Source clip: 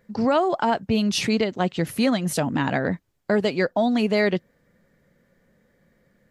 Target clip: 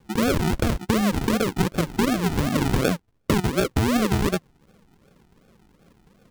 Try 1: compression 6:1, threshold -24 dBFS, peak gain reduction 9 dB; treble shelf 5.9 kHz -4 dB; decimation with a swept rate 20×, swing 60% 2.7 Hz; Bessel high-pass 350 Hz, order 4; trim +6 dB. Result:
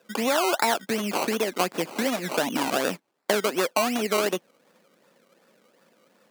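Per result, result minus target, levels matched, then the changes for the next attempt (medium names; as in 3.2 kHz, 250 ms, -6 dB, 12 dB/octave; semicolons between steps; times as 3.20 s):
decimation with a swept rate: distortion -12 dB; 250 Hz band -5.0 dB
change: decimation with a swept rate 63×, swing 60% 2.7 Hz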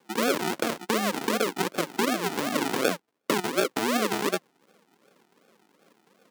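250 Hz band -3.5 dB
remove: Bessel high-pass 350 Hz, order 4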